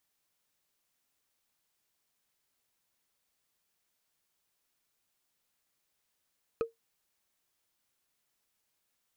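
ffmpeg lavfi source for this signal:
-f lavfi -i "aevalsrc='0.0708*pow(10,-3*t/0.15)*sin(2*PI*458*t)+0.0282*pow(10,-3*t/0.044)*sin(2*PI*1262.7*t)+0.0112*pow(10,-3*t/0.02)*sin(2*PI*2475*t)+0.00447*pow(10,-3*t/0.011)*sin(2*PI*4091.3*t)+0.00178*pow(10,-3*t/0.007)*sin(2*PI*6109.7*t)':d=0.45:s=44100"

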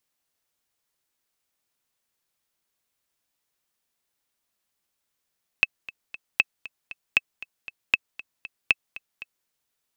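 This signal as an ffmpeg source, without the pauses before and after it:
-f lavfi -i "aevalsrc='pow(10,(-4-19*gte(mod(t,3*60/234),60/234))/20)*sin(2*PI*2610*mod(t,60/234))*exp(-6.91*mod(t,60/234)/0.03)':d=3.84:s=44100"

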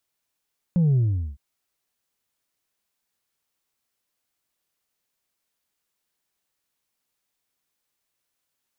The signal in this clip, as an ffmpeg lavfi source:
-f lavfi -i "aevalsrc='0.15*clip((0.61-t)/0.41,0,1)*tanh(1.26*sin(2*PI*180*0.61/log(65/180)*(exp(log(65/180)*t/0.61)-1)))/tanh(1.26)':d=0.61:s=44100"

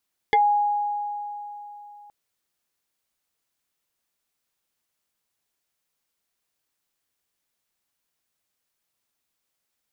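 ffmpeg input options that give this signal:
-f lavfi -i "aevalsrc='0.2*pow(10,-3*t/3.42)*sin(2*PI*826*t+1.7*pow(10,-3*t/0.11)*sin(2*PI*1.54*826*t))':d=1.77:s=44100"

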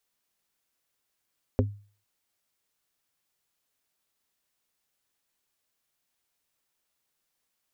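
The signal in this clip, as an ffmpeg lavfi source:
-f lavfi -i "aevalsrc='0.112*pow(10,-3*t/0.41)*sin(2*PI*102*t)+0.106*pow(10,-3*t/0.137)*sin(2*PI*255*t)+0.1*pow(10,-3*t/0.078)*sin(2*PI*408*t)+0.0944*pow(10,-3*t/0.059)*sin(2*PI*510*t)':d=0.45:s=44100"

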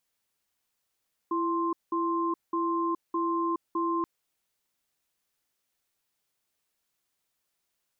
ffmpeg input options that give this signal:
-f lavfi -i "aevalsrc='0.0398*(sin(2*PI*335*t)+sin(2*PI*1050*t))*clip(min(mod(t,0.61),0.42-mod(t,0.61))/0.005,0,1)':d=2.73:s=44100"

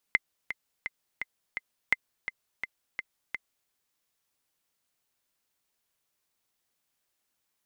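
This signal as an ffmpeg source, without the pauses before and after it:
-f lavfi -i "aevalsrc='pow(10,(-8.5-11*gte(mod(t,5*60/169),60/169))/20)*sin(2*PI*2070*mod(t,60/169))*exp(-6.91*mod(t,60/169)/0.03)':d=3.55:s=44100"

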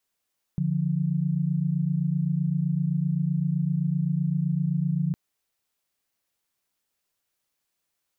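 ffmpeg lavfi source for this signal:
-f lavfi -i "aevalsrc='0.0562*(sin(2*PI*146.83*t)+sin(2*PI*174.61*t))':d=4.56:s=44100"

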